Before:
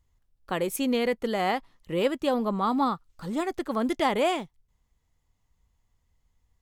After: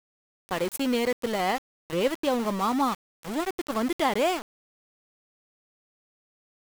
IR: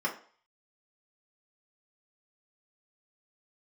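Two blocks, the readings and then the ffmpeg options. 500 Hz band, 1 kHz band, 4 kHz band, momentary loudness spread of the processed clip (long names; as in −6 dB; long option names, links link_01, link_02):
−0.5 dB, 0.0 dB, +1.0 dB, 8 LU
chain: -af "aeval=exprs='val(0)*gte(abs(val(0)),0.0299)':channel_layout=same"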